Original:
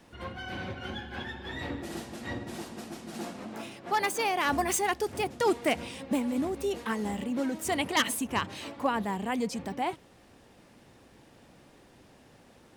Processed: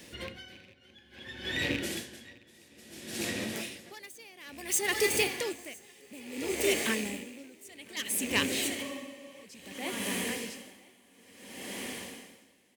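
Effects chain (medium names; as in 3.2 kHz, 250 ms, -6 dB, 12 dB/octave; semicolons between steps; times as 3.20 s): rattle on loud lows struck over -37 dBFS, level -30 dBFS; tilt EQ +2 dB/octave; echo that smears into a reverb 1013 ms, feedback 59%, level -10 dB; in parallel at -1.5 dB: compression, threshold -37 dBFS, peak gain reduction 17.5 dB; on the sum: high-order bell 1 kHz -11 dB 1.3 oct; on a send: delay 1005 ms -9 dB; on the sum: spectral freeze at 8.84 s, 0.60 s; logarithmic tremolo 0.59 Hz, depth 26 dB; trim +3 dB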